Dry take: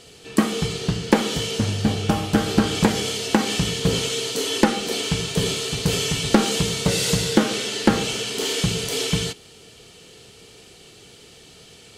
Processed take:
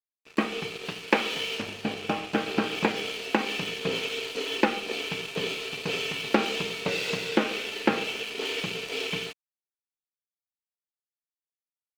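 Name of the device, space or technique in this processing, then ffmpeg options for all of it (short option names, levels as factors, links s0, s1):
pocket radio on a weak battery: -filter_complex "[0:a]asettb=1/sr,asplit=3[s0][s1][s2];[s0]atrim=end=0.854[s3];[s1]atrim=start=0.85:end=1.62,asetpts=PTS-STARTPTS,afade=t=in:d=0.004:c=qsin,afade=t=out:st=0.766:d=0.004:c=qsin,tiltshelf=f=660:g=-3.5[s4];[s2]atrim=start=1.616[s5];[s3][s4]acrossfade=d=0.004:c1=hsin:c2=qsin[s6];[s6][s5]acrossfade=d=0.004:c1=qsin:c2=hsin,highpass=280,lowpass=3500,aeval=exprs='sgn(val(0))*max(abs(val(0))-0.0133,0)':c=same,equalizer=f=2500:t=o:w=0.28:g=10,volume=0.668"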